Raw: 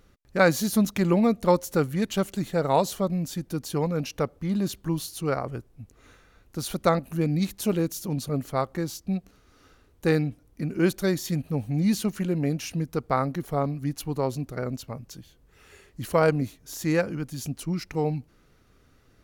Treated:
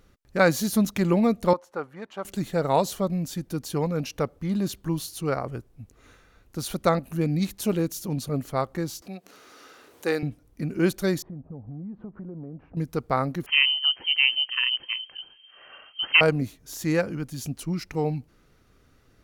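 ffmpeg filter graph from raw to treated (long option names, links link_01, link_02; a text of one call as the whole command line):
ffmpeg -i in.wav -filter_complex "[0:a]asettb=1/sr,asplit=3[link_01][link_02][link_03];[link_01]atrim=end=1.534[link_04];[link_02]atrim=start=1.53:end=2.25,asetpts=PTS-STARTPTS,afade=type=in:duration=0.004:curve=qsin,afade=type=out:start_time=0.716:duration=0.004:curve=qsin,agate=range=-33dB:threshold=-42dB:ratio=3:release=100:detection=peak,bandpass=frequency=940:width_type=q:width=1.5[link_05];[link_03]atrim=start=2.246[link_06];[link_04][link_05]acrossfade=duration=0.004:curve1=hsin:curve2=qsin[link_07];[link_07][link_06]acrossfade=duration=0.004:curve1=qsin:curve2=hsin,asettb=1/sr,asplit=3[link_08][link_09][link_10];[link_08]atrim=end=9.024[link_11];[link_09]atrim=start=9.02:end=10.23,asetpts=PTS-STARTPTS,afade=type=in:duration=0.004:curve=qsin,afade=type=out:start_time=1.206:duration=0.004:curve=qsin,highpass=380,acompressor=mode=upward:threshold=-38dB:ratio=2.5:attack=3.2:release=140:knee=2.83:detection=peak[link_12];[link_10]atrim=start=10.226[link_13];[link_11][link_12]acrossfade=duration=0.004:curve1=hsin:curve2=qsin[link_14];[link_14][link_13]acrossfade=duration=0.004:curve1=qsin:curve2=hsin,asettb=1/sr,asplit=3[link_15][link_16][link_17];[link_15]atrim=end=11.224[link_18];[link_16]atrim=start=11.22:end=12.77,asetpts=PTS-STARTPTS,afade=type=in:duration=0.004:curve=qsin,afade=type=out:start_time=1.546:duration=0.004:curve=qsin,lowpass=frequency=1100:width=0.5412,lowpass=frequency=1100:width=1.3066,acompressor=threshold=-36dB:ratio=5:attack=3.2:release=140:knee=1:detection=peak[link_19];[link_17]atrim=start=12.766[link_20];[link_18][link_19]acrossfade=duration=0.004:curve1=hsin:curve2=qsin[link_21];[link_21][link_20]acrossfade=duration=0.004:curve1=qsin:curve2=hsin,asettb=1/sr,asplit=3[link_22][link_23][link_24];[link_22]atrim=end=13.464[link_25];[link_23]atrim=start=13.46:end=16.21,asetpts=PTS-STARTPTS,afade=type=in:duration=0.004:curve=qsin,afade=type=out:start_time=2.746:duration=0.004:curve=qsin,aeval=exprs='clip(val(0),-1,0.158)':channel_layout=same,acontrast=33,lowpass=frequency=2700:width_type=q:width=0.5098,lowpass=frequency=2700:width_type=q:width=0.6013,lowpass=frequency=2700:width_type=q:width=0.9,lowpass=frequency=2700:width_type=q:width=2.563,afreqshift=-3200[link_26];[link_24]atrim=start=16.206[link_27];[link_25][link_26]acrossfade=duration=0.004:curve1=hsin:curve2=qsin[link_28];[link_28][link_27]acrossfade=duration=0.004:curve1=qsin:curve2=hsin" out.wav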